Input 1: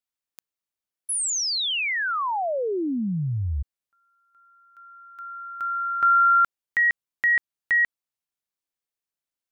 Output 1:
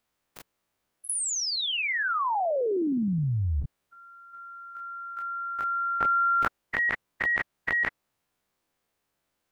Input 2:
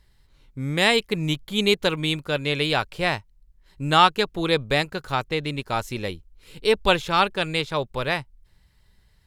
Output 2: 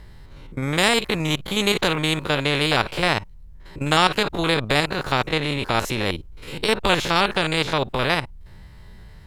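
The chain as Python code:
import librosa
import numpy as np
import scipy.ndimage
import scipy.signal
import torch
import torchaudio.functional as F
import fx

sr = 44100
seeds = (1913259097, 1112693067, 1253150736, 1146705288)

y = fx.spec_steps(x, sr, hold_ms=50)
y = fx.high_shelf(y, sr, hz=2300.0, db=-12.0)
y = fx.spectral_comp(y, sr, ratio=2.0)
y = y * 10.0 ** (6.0 / 20.0)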